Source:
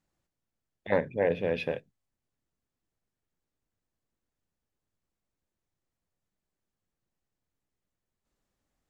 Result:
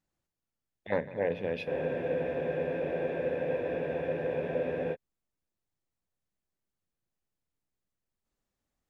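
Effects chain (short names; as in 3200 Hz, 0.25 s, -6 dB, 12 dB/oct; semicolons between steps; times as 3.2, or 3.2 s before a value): multi-head echo 76 ms, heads second and third, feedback 64%, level -18 dB; spectral freeze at 1.7, 3.23 s; gain -4 dB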